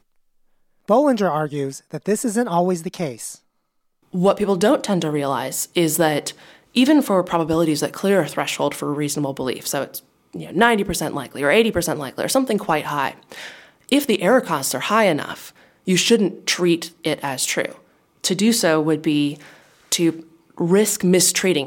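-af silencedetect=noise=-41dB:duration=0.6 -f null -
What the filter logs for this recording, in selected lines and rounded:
silence_start: 0.00
silence_end: 0.88 | silence_duration: 0.88
silence_start: 3.37
silence_end: 4.13 | silence_duration: 0.76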